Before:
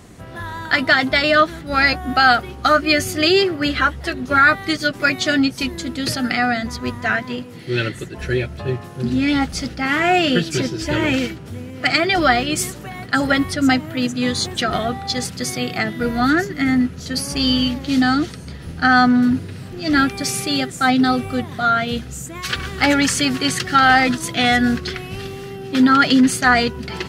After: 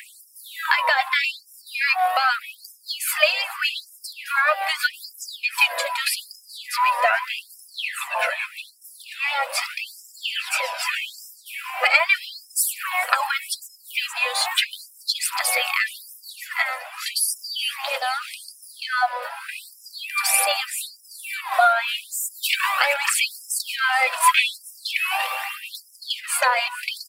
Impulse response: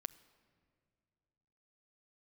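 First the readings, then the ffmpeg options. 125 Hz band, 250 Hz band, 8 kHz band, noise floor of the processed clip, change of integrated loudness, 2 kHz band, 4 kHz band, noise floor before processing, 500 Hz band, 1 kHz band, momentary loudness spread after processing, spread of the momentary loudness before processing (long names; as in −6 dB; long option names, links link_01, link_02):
below −40 dB, below −40 dB, +1.5 dB, −50 dBFS, −4.5 dB, −3.5 dB, −3.0 dB, −35 dBFS, −9.0 dB, −4.0 dB, 16 LU, 12 LU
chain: -filter_complex "[0:a]acompressor=threshold=-23dB:ratio=6,equalizer=frequency=4600:width=0.45:gain=-13.5,acrossover=split=280|3000[link_01][link_02][link_03];[link_02]acompressor=threshold=-38dB:ratio=6[link_04];[link_01][link_04][link_03]amix=inputs=3:normalize=0,equalizer=frequency=1000:width_type=o:width=0.33:gain=11,equalizer=frequency=2500:width_type=o:width=0.33:gain=11,equalizer=frequency=6300:width_type=o:width=0.33:gain=-12,aphaser=in_gain=1:out_gain=1:delay=3.2:decay=0.55:speed=0.39:type=triangular,asplit=7[link_05][link_06][link_07][link_08][link_09][link_10][link_11];[link_06]adelay=427,afreqshift=72,volume=-19dB[link_12];[link_07]adelay=854,afreqshift=144,volume=-23dB[link_13];[link_08]adelay=1281,afreqshift=216,volume=-27dB[link_14];[link_09]adelay=1708,afreqshift=288,volume=-31dB[link_15];[link_10]adelay=2135,afreqshift=360,volume=-35.1dB[link_16];[link_11]adelay=2562,afreqshift=432,volume=-39.1dB[link_17];[link_05][link_12][link_13][link_14][link_15][link_16][link_17]amix=inputs=7:normalize=0,alimiter=level_in=14dB:limit=-1dB:release=50:level=0:latency=1,afftfilt=real='re*gte(b*sr/1024,480*pow(5100/480,0.5+0.5*sin(2*PI*0.82*pts/sr)))':imag='im*gte(b*sr/1024,480*pow(5100/480,0.5+0.5*sin(2*PI*0.82*pts/sr)))':win_size=1024:overlap=0.75,volume=3dB"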